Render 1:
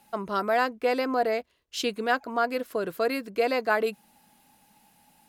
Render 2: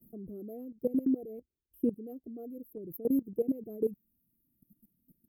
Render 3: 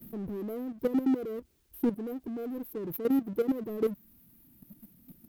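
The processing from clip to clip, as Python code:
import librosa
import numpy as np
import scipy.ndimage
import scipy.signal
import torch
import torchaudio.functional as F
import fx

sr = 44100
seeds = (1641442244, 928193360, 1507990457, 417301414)

y1 = fx.dereverb_blind(x, sr, rt60_s=1.1)
y1 = scipy.signal.sosfilt(scipy.signal.cheby2(4, 50, [870.0, 7100.0], 'bandstop', fs=sr, output='sos'), y1)
y1 = fx.level_steps(y1, sr, step_db=17)
y1 = F.gain(torch.from_numpy(y1), 8.5).numpy()
y2 = fx.power_curve(y1, sr, exponent=0.7)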